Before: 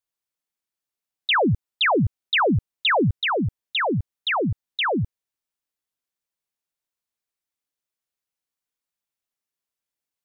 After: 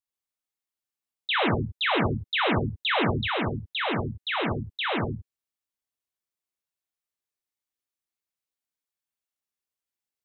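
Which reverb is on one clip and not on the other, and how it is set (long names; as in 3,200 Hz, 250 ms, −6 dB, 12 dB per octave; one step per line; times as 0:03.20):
reverb whose tail is shaped and stops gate 180 ms flat, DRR −1 dB
level −7.5 dB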